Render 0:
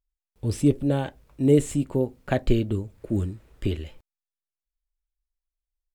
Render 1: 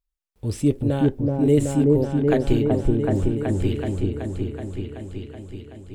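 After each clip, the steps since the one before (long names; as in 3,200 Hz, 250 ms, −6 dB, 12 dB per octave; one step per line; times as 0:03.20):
echo whose low-pass opens from repeat to repeat 377 ms, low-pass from 750 Hz, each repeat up 1 octave, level 0 dB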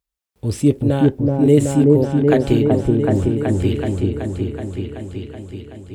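high-pass filter 61 Hz
level +5 dB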